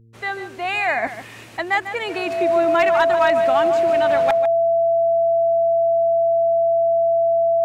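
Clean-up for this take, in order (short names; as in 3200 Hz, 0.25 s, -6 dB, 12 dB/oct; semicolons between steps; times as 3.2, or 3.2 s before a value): clip repair -9 dBFS; de-hum 113.9 Hz, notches 4; notch 670 Hz, Q 30; inverse comb 0.147 s -11 dB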